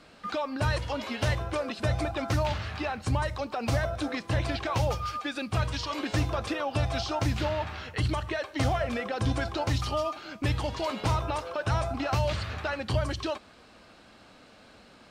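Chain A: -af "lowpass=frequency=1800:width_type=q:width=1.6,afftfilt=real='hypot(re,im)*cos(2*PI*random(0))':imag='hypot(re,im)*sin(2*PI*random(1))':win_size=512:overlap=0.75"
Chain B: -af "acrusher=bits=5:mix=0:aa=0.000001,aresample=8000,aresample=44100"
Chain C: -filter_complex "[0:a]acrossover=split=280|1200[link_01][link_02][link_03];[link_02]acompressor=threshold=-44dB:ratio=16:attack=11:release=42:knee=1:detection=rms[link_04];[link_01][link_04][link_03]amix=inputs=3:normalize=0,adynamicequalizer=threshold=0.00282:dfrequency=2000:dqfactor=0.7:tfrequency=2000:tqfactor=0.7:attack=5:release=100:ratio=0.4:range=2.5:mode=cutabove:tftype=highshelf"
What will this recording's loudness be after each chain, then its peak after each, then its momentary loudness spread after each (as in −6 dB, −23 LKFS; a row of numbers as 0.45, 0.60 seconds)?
−36.0, −30.5, −33.0 LKFS; −16.5, −14.0, −16.5 dBFS; 4, 4, 6 LU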